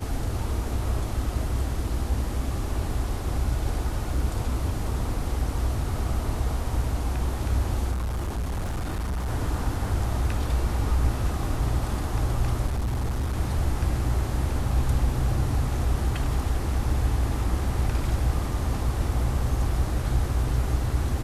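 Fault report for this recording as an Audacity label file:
7.910000	9.280000	clipped -25 dBFS
12.660000	13.360000	clipped -23 dBFS

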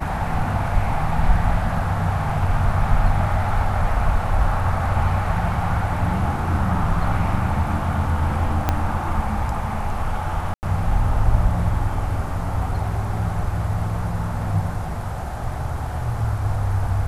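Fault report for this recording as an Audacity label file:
8.690000	8.690000	pop -5 dBFS
10.540000	10.630000	gap 89 ms

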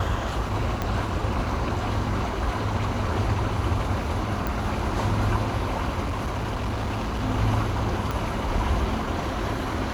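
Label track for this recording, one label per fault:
0.820000	0.820000	pop -12 dBFS
4.470000	4.470000	pop
6.020000	7.240000	clipped -24 dBFS
8.110000	8.110000	pop -14 dBFS

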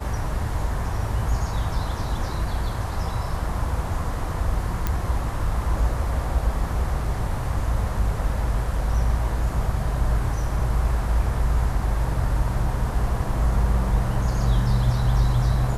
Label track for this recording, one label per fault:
4.870000	4.870000	pop -10 dBFS

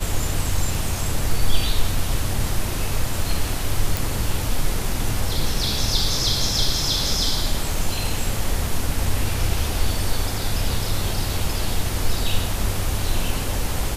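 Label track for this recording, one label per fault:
3.970000	3.970000	pop

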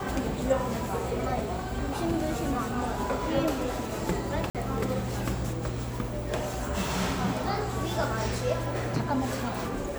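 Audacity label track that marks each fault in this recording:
4.500000	4.550000	gap 47 ms

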